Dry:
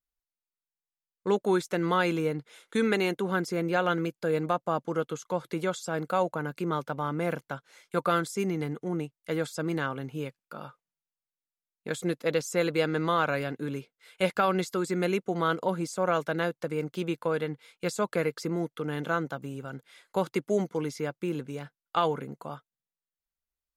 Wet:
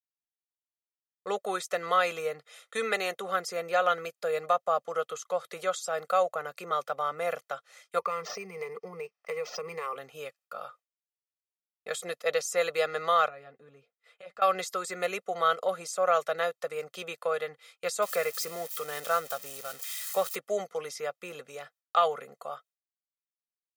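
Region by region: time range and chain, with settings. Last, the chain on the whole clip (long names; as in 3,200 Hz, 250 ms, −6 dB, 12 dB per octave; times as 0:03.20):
0:07.99–0:09.96: EQ curve with evenly spaced ripples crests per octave 0.83, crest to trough 18 dB + downward compressor 5 to 1, threshold −28 dBFS + linearly interpolated sample-rate reduction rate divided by 4×
0:13.28–0:14.42: RIAA equalisation playback + downward compressor 2 to 1, threshold −50 dBFS + notch comb filter 190 Hz
0:18.02–0:20.36: spike at every zero crossing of −31 dBFS + noise that follows the level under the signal 30 dB
whole clip: downward expander −55 dBFS; high-pass filter 530 Hz 12 dB per octave; comb filter 1.6 ms, depth 82%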